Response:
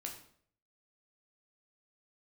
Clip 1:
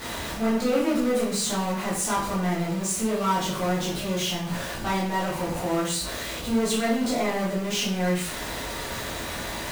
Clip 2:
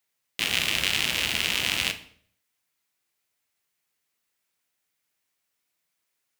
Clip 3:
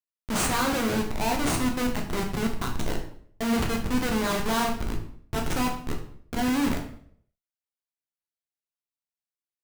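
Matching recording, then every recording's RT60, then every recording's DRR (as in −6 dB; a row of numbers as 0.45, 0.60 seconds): 3; 0.60, 0.60, 0.60 seconds; −8.0, 8.5, 0.5 decibels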